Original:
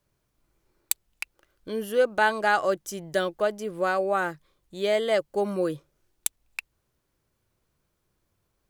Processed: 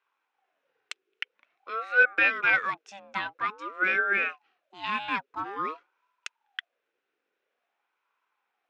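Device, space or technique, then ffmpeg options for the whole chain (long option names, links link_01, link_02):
voice changer toy: -af "aeval=exprs='val(0)*sin(2*PI*690*n/s+690*0.45/0.49*sin(2*PI*0.49*n/s))':channel_layout=same,highpass=460,equalizer=frequency=630:width_type=q:width=4:gain=-8,equalizer=frequency=920:width_type=q:width=4:gain=-6,equalizer=frequency=1500:width_type=q:width=4:gain=7,equalizer=frequency=2500:width_type=q:width=4:gain=7,equalizer=frequency=4600:width_type=q:width=4:gain=-8,lowpass=frequency=4800:width=0.5412,lowpass=frequency=4800:width=1.3066"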